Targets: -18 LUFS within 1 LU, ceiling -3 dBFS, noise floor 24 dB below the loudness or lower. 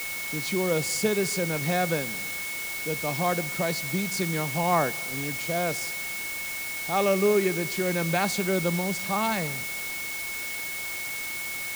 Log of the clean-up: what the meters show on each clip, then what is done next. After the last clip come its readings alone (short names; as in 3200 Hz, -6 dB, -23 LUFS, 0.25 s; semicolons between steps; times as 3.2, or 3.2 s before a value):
steady tone 2200 Hz; tone level -33 dBFS; noise floor -33 dBFS; noise floor target -51 dBFS; loudness -27.0 LUFS; peak -10.0 dBFS; loudness target -18.0 LUFS
-> notch 2200 Hz, Q 30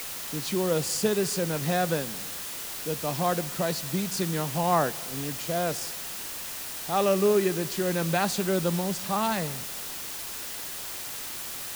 steady tone none; noise floor -37 dBFS; noise floor target -52 dBFS
-> noise print and reduce 15 dB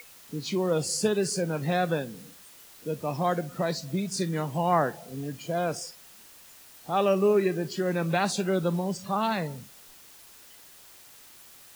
noise floor -52 dBFS; loudness -28.0 LUFS; peak -10.5 dBFS; loudness target -18.0 LUFS
-> gain +10 dB; limiter -3 dBFS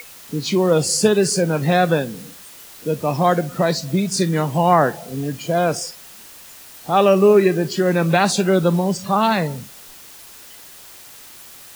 loudness -18.0 LUFS; peak -3.0 dBFS; noise floor -42 dBFS